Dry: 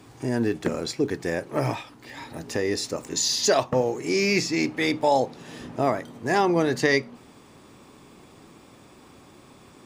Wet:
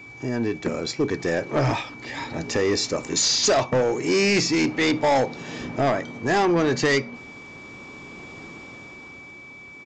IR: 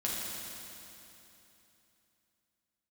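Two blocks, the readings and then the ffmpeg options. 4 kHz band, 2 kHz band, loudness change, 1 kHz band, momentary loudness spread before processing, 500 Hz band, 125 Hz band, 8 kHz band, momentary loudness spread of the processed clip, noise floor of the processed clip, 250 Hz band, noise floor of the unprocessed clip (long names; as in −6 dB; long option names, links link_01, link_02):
+3.5 dB, +2.5 dB, +2.0 dB, +1.5 dB, 14 LU, +2.0 dB, +3.0 dB, +3.0 dB, 20 LU, −43 dBFS, +2.5 dB, −51 dBFS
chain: -af "dynaudnorm=framelen=110:gausssize=21:maxgain=9dB,aeval=exprs='val(0)+0.00891*sin(2*PI*2300*n/s)':channel_layout=same,aresample=16000,asoftclip=type=tanh:threshold=-15dB,aresample=44100"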